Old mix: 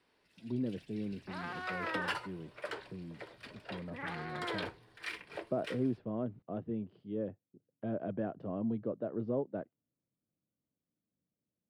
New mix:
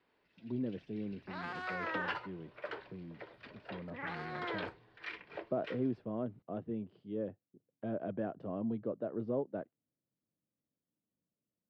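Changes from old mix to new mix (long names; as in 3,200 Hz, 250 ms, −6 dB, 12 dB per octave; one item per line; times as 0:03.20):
first sound: add high-frequency loss of the air 230 metres
master: add low-shelf EQ 200 Hz −4 dB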